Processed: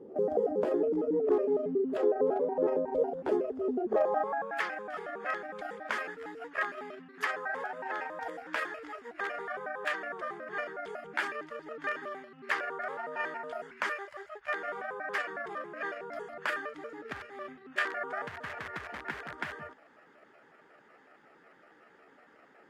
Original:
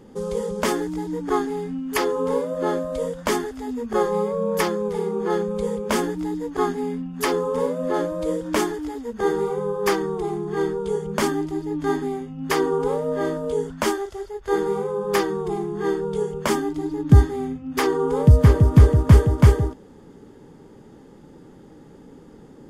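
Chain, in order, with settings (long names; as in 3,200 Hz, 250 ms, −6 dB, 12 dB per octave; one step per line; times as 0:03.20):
pitch shifter gated in a rhythm +7 semitones, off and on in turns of 92 ms
in parallel at −6 dB: wrap-around overflow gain 12.5 dB
on the sum: downward compressor 5 to 1, threshold −20 dBFS, peak gain reduction 13 dB
band-pass filter sweep 420 Hz → 1,700 Hz, 0:03.84–0:04.51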